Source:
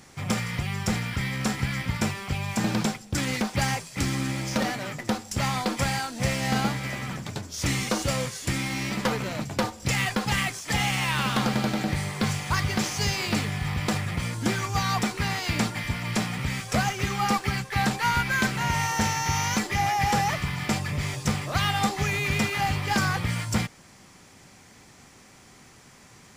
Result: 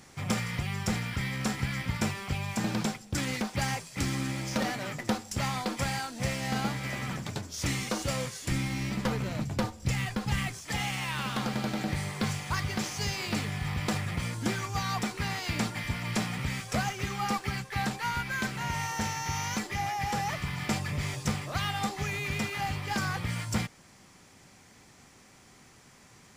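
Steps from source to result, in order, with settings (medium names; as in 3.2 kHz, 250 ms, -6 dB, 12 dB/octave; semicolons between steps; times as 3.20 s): 8.51–10.66 s: bass shelf 180 Hz +11.5 dB; gain riding within 4 dB 0.5 s; trim -5.5 dB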